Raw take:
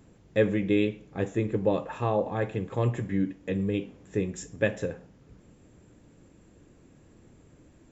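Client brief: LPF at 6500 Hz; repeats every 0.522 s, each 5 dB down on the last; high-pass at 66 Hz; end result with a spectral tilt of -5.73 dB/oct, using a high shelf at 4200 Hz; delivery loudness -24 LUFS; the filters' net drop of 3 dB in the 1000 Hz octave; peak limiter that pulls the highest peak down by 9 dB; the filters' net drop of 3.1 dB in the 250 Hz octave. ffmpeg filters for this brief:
-af "highpass=66,lowpass=6.5k,equalizer=f=250:t=o:g=-4,equalizer=f=1k:t=o:g=-4,highshelf=f=4.2k:g=5.5,alimiter=limit=-20.5dB:level=0:latency=1,aecho=1:1:522|1044|1566|2088|2610|3132|3654:0.562|0.315|0.176|0.0988|0.0553|0.031|0.0173,volume=9dB"

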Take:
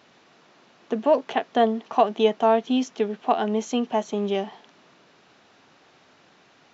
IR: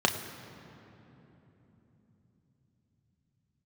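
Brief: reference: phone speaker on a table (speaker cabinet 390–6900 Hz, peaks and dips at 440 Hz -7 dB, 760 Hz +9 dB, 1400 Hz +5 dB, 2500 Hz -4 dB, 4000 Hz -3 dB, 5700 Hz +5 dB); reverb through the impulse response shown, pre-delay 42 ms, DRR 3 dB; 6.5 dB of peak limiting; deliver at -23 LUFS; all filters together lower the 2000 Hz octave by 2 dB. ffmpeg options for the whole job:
-filter_complex "[0:a]equalizer=f=2k:t=o:g=-4,alimiter=limit=-12.5dB:level=0:latency=1,asplit=2[a][b];[1:a]atrim=start_sample=2205,adelay=42[c];[b][c]afir=irnorm=-1:irlink=0,volume=-16dB[d];[a][d]amix=inputs=2:normalize=0,highpass=f=390:w=0.5412,highpass=f=390:w=1.3066,equalizer=f=440:t=q:w=4:g=-7,equalizer=f=760:t=q:w=4:g=9,equalizer=f=1.4k:t=q:w=4:g=5,equalizer=f=2.5k:t=q:w=4:g=-4,equalizer=f=4k:t=q:w=4:g=-3,equalizer=f=5.7k:t=q:w=4:g=5,lowpass=f=6.9k:w=0.5412,lowpass=f=6.9k:w=1.3066,volume=-0.5dB"

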